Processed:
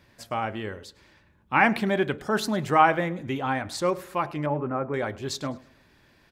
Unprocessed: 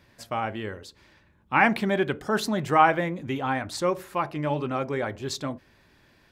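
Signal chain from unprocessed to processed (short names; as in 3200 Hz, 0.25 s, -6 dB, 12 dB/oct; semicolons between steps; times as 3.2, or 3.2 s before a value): 4.46–4.94 LPF 1700 Hz 24 dB/oct; on a send: feedback echo 0.105 s, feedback 39%, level -22 dB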